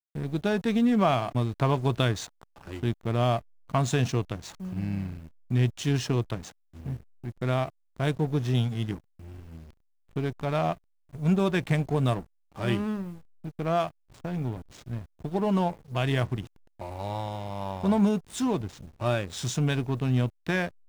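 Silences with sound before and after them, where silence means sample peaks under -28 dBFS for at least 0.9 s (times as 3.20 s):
8.94–10.17 s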